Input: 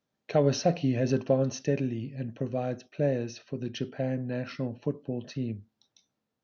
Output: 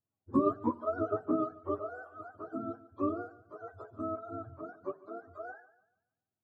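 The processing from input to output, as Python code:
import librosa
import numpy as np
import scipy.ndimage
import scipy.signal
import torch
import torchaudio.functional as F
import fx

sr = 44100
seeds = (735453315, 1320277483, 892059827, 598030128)

y = fx.octave_mirror(x, sr, pivot_hz=410.0)
y = fx.echo_thinned(y, sr, ms=144, feedback_pct=34, hz=180.0, wet_db=-16)
y = fx.upward_expand(y, sr, threshold_db=-35.0, expansion=1.5)
y = y * librosa.db_to_amplitude(-1.5)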